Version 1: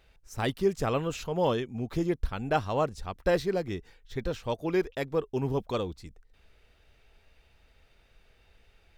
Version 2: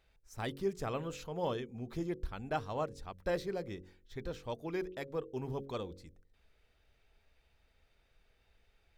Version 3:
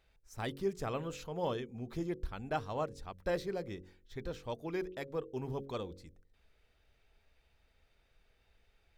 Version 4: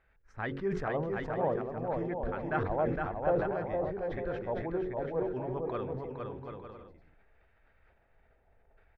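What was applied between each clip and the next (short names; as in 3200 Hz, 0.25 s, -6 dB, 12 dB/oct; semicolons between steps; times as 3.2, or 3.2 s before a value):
notch 2800 Hz, Q 21; de-hum 45.91 Hz, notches 12; gain -8.5 dB
nothing audible
LFO low-pass square 0.57 Hz 750–1700 Hz; bouncing-ball echo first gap 0.46 s, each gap 0.6×, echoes 5; sustainer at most 51 dB/s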